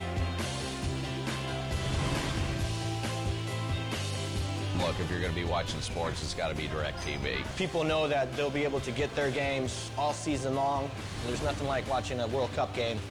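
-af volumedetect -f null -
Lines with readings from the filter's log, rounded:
mean_volume: -31.7 dB
max_volume: -19.5 dB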